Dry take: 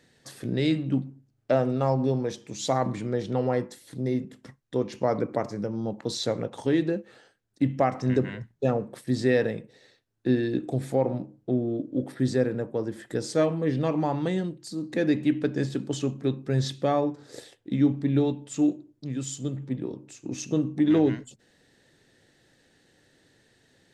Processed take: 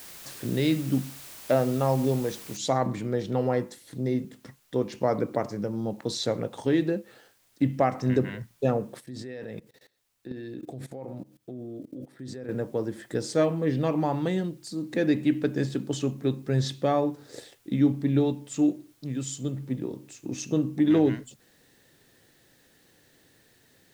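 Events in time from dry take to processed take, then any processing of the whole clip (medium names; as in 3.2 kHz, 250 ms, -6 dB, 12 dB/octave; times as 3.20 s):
2.57 s: noise floor step -45 dB -66 dB
9.00–12.49 s: level held to a coarse grid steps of 19 dB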